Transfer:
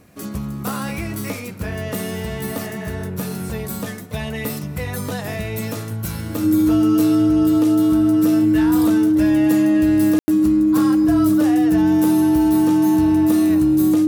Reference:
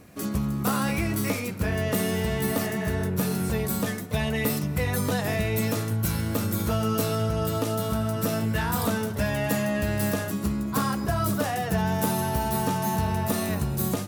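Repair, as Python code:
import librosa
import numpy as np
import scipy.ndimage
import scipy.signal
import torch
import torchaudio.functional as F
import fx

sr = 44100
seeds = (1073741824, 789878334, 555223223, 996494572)

y = fx.notch(x, sr, hz=310.0, q=30.0)
y = fx.fix_ambience(y, sr, seeds[0], print_start_s=0.0, print_end_s=0.5, start_s=10.19, end_s=10.28)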